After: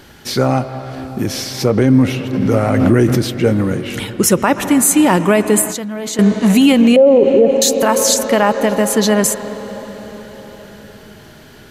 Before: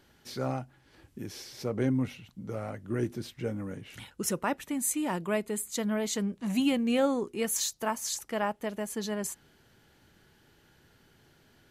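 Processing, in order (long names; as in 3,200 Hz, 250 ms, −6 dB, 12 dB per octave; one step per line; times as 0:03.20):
0:06.96–0:07.62: low-pass with resonance 560 Hz, resonance Q 4.9
convolution reverb RT60 5.3 s, pre-delay 96 ms, DRR 11.5 dB
0:05.71–0:06.19: output level in coarse steps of 22 dB
boost into a limiter +22 dB
0:02.33–0:03.30: background raised ahead of every attack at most 24 dB per second
level −1.5 dB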